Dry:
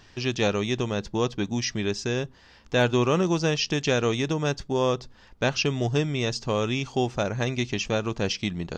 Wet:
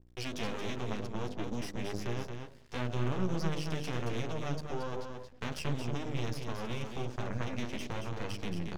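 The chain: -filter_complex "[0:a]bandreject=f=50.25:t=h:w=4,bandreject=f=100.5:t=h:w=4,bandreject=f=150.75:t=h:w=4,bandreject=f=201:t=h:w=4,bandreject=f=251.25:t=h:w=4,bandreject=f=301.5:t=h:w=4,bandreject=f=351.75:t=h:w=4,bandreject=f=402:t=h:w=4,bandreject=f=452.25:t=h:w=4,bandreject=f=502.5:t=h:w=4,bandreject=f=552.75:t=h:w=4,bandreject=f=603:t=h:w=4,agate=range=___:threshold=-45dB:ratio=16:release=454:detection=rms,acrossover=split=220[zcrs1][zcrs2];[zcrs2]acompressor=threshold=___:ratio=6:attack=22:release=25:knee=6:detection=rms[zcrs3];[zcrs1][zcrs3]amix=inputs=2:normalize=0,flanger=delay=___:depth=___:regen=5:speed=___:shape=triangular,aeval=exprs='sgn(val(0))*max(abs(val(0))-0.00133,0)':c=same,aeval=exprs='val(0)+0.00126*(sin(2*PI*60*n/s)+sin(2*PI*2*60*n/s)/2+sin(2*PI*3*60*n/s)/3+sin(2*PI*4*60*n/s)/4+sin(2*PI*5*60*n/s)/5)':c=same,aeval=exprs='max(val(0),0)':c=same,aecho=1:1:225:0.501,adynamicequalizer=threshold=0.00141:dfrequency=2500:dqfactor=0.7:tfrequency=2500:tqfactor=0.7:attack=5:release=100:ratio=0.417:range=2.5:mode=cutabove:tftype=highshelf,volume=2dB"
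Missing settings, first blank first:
-7dB, -36dB, 8.2, 5.8, 0.97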